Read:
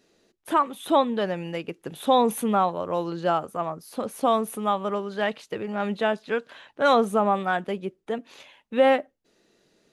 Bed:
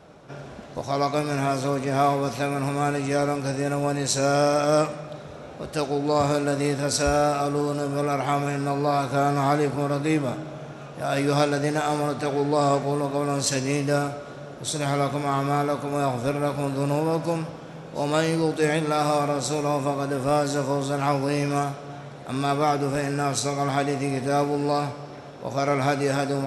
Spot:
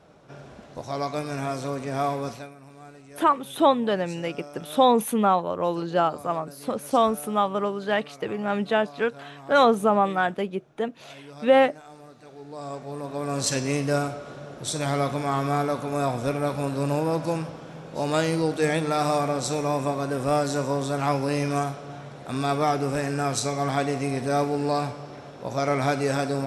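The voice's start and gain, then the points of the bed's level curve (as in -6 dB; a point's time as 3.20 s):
2.70 s, +1.5 dB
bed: 2.30 s -5 dB
2.56 s -22 dB
12.25 s -22 dB
13.43 s -1 dB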